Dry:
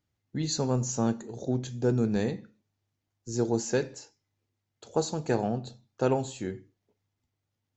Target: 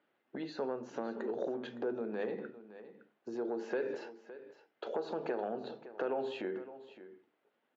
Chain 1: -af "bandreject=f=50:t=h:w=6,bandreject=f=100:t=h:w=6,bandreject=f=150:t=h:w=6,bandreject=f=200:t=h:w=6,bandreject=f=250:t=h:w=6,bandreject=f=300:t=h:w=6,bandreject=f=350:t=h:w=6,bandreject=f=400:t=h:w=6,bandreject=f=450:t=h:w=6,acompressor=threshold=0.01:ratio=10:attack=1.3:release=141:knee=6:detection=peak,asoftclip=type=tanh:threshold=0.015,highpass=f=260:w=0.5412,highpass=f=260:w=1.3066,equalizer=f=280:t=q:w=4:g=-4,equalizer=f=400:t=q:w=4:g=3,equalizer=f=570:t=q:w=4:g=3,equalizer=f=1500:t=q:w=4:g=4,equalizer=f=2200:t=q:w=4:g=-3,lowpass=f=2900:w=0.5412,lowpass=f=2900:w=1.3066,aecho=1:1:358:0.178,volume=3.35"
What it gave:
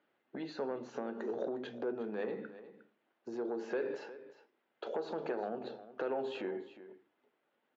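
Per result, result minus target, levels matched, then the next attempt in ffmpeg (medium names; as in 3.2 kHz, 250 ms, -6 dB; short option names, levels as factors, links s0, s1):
saturation: distortion +12 dB; echo 205 ms early
-af "bandreject=f=50:t=h:w=6,bandreject=f=100:t=h:w=6,bandreject=f=150:t=h:w=6,bandreject=f=200:t=h:w=6,bandreject=f=250:t=h:w=6,bandreject=f=300:t=h:w=6,bandreject=f=350:t=h:w=6,bandreject=f=400:t=h:w=6,bandreject=f=450:t=h:w=6,acompressor=threshold=0.01:ratio=10:attack=1.3:release=141:knee=6:detection=peak,asoftclip=type=tanh:threshold=0.0335,highpass=f=260:w=0.5412,highpass=f=260:w=1.3066,equalizer=f=280:t=q:w=4:g=-4,equalizer=f=400:t=q:w=4:g=3,equalizer=f=570:t=q:w=4:g=3,equalizer=f=1500:t=q:w=4:g=4,equalizer=f=2200:t=q:w=4:g=-3,lowpass=f=2900:w=0.5412,lowpass=f=2900:w=1.3066,aecho=1:1:358:0.178,volume=3.35"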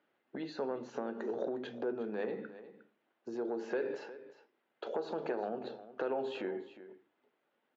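echo 205 ms early
-af "bandreject=f=50:t=h:w=6,bandreject=f=100:t=h:w=6,bandreject=f=150:t=h:w=6,bandreject=f=200:t=h:w=6,bandreject=f=250:t=h:w=6,bandreject=f=300:t=h:w=6,bandreject=f=350:t=h:w=6,bandreject=f=400:t=h:w=6,bandreject=f=450:t=h:w=6,acompressor=threshold=0.01:ratio=10:attack=1.3:release=141:knee=6:detection=peak,asoftclip=type=tanh:threshold=0.0335,highpass=f=260:w=0.5412,highpass=f=260:w=1.3066,equalizer=f=280:t=q:w=4:g=-4,equalizer=f=400:t=q:w=4:g=3,equalizer=f=570:t=q:w=4:g=3,equalizer=f=1500:t=q:w=4:g=4,equalizer=f=2200:t=q:w=4:g=-3,lowpass=f=2900:w=0.5412,lowpass=f=2900:w=1.3066,aecho=1:1:563:0.178,volume=3.35"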